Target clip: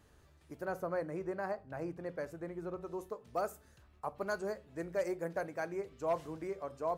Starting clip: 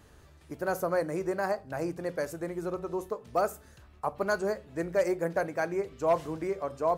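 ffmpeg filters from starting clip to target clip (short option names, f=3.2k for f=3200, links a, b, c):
-filter_complex "[0:a]asettb=1/sr,asplit=3[a][b][c];[a]atrim=end=0.654[d];[b]atrim=start=0.65:end=2.81,asetpts=PTS-STARTPTS,afade=t=in:d=0.004:c=qsin,afade=t=out:st=2.156:d=0.004:c=qsin,bass=f=250:g=2,treble=f=4k:g=-10[e];[c]atrim=start=2.806[f];[d][e]acrossfade=d=0.004:c1=hsin:c2=qsin[g];[g][f]acrossfade=d=0.004:c1=qsin:c2=hsin,volume=-8dB"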